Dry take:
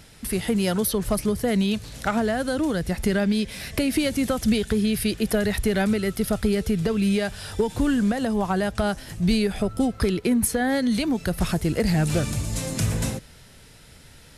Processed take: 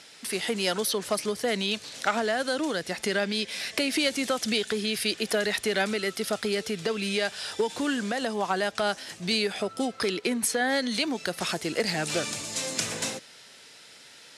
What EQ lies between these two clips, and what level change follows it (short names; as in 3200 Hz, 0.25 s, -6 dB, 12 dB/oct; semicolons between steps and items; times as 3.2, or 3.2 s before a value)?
BPF 340–6800 Hz; high shelf 2100 Hz +8.5 dB; -2.0 dB